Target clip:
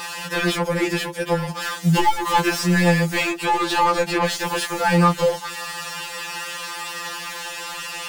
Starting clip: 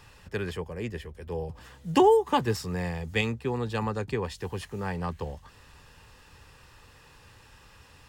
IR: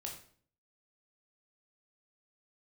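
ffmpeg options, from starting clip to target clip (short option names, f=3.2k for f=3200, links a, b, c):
-filter_complex "[0:a]crystalizer=i=4.5:c=0,asplit=2[a][b];[b]highpass=f=720:p=1,volume=36dB,asoftclip=type=tanh:threshold=-6dB[c];[a][c]amix=inputs=2:normalize=0,lowpass=f=1.9k:p=1,volume=-6dB,afftfilt=real='re*2.83*eq(mod(b,8),0)':imag='im*2.83*eq(mod(b,8),0)':win_size=2048:overlap=0.75,volume=-1.5dB"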